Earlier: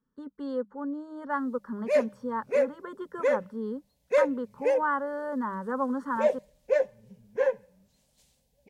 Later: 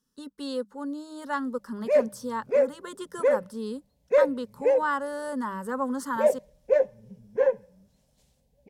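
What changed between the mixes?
speech: remove Savitzky-Golay filter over 41 samples; background: add tilt shelf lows +5 dB, about 1.1 kHz

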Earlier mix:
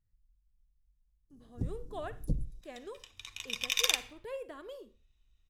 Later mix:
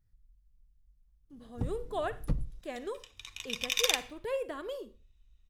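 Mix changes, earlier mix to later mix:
speech +7.0 dB; first sound: remove Chebyshev band-stop 440–6000 Hz, order 2

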